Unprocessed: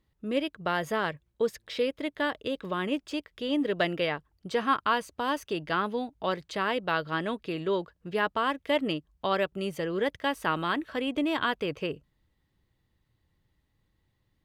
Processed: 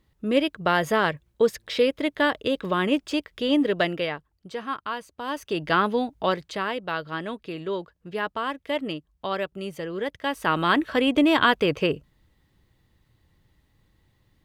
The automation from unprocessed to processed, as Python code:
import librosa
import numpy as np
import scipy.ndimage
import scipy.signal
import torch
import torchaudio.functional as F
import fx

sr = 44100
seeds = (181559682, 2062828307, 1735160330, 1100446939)

y = fx.gain(x, sr, db=fx.line((3.52, 7.0), (4.57, -5.0), (5.14, -5.0), (5.66, 7.0), (6.2, 7.0), (6.77, -1.0), (10.12, -1.0), (10.77, 9.0)))